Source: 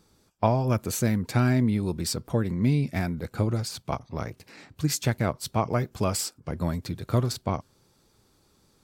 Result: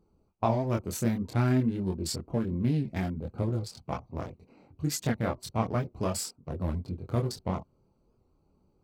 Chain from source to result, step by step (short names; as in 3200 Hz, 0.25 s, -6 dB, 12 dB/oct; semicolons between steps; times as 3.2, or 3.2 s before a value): Wiener smoothing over 25 samples; chorus voices 6, 0.41 Hz, delay 24 ms, depth 3 ms; record warp 78 rpm, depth 100 cents